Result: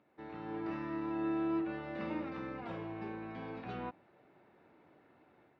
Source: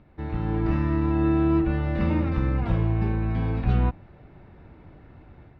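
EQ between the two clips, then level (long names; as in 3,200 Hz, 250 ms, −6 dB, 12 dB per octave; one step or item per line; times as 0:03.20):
resonant band-pass 320 Hz, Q 0.75
first difference
+15.0 dB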